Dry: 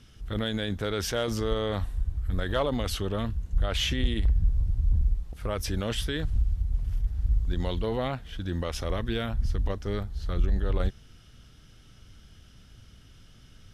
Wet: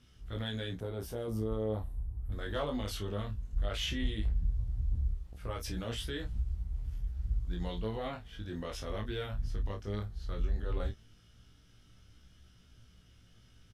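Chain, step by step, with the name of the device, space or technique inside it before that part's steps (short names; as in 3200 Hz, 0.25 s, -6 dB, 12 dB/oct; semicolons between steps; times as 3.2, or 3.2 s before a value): double-tracked vocal (doubler 28 ms -7 dB; chorus 0.16 Hz, delay 16.5 ms, depth 3.2 ms); 0.8–2.32 band shelf 3100 Hz -13 dB 2.8 oct; gain -5.5 dB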